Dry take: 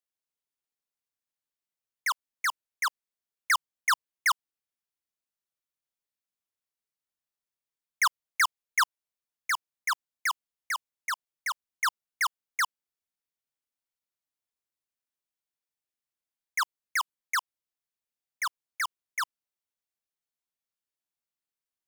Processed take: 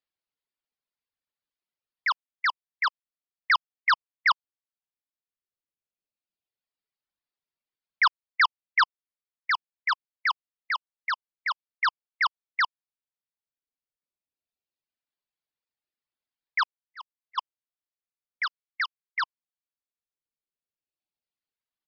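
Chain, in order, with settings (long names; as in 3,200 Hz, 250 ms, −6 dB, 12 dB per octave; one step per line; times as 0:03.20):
reverb reduction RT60 1.7 s
0:16.60–0:17.38: volume swells 318 ms
0:18.43–0:19.22: Butterworth high-pass 1,200 Hz 36 dB per octave
floating-point word with a short mantissa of 4 bits
downsampling to 11,025 Hz
level +3.5 dB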